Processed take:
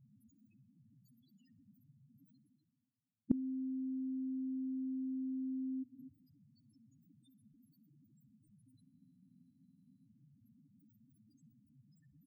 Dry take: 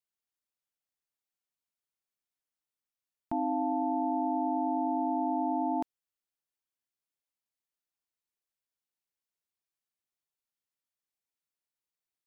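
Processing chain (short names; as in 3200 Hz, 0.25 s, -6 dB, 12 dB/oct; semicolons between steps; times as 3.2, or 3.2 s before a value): graphic EQ 125/250/500 Hz +9/+10/-11 dB; reverse; upward compressor, threshold -42 dBFS; reverse; loudest bins only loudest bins 2; notches 60/120/180/240 Hz; feedback echo 63 ms, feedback 57%, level -23.5 dB; flipped gate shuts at -32 dBFS, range -26 dB; spectral freeze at 8.84, 1.22 s; gain +15 dB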